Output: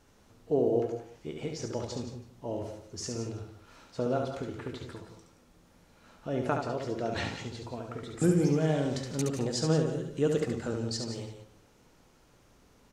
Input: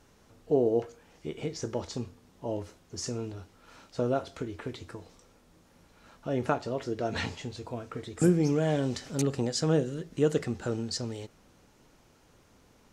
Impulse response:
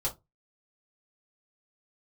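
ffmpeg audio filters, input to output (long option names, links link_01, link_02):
-filter_complex "[0:a]aecho=1:1:69.97|174.9:0.562|0.282,asplit=2[link_01][link_02];[1:a]atrim=start_sample=2205,adelay=145[link_03];[link_02][link_03]afir=irnorm=-1:irlink=0,volume=-17.5dB[link_04];[link_01][link_04]amix=inputs=2:normalize=0,volume=-2.5dB"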